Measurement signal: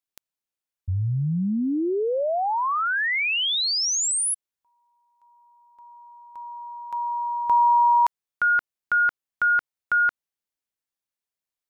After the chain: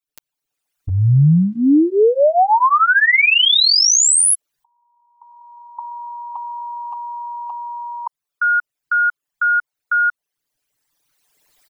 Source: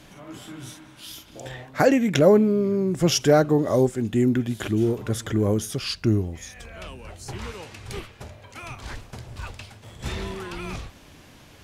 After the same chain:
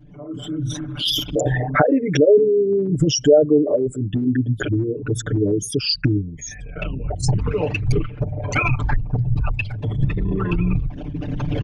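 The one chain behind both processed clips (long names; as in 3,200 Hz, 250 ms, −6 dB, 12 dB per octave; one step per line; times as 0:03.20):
spectral envelope exaggerated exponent 3
camcorder AGC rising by 17 dB per second, up to +30 dB
comb filter 6.8 ms, depth 97%
level −1 dB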